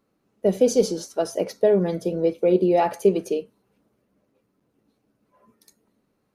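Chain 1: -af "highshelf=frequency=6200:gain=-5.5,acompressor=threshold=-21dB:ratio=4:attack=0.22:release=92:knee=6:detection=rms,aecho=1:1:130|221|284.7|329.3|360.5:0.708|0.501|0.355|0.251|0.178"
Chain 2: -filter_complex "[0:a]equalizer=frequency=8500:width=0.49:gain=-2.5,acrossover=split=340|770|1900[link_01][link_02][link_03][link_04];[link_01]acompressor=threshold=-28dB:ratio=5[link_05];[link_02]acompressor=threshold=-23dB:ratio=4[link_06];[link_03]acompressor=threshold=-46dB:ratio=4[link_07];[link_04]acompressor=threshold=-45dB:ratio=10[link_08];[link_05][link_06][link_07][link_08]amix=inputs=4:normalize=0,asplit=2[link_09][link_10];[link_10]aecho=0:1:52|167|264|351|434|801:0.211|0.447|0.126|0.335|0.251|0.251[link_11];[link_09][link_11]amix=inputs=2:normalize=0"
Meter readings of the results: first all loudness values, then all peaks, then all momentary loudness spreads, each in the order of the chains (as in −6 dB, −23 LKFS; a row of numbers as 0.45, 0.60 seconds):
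−26.0, −25.5 LKFS; −13.0, −9.0 dBFS; 9, 14 LU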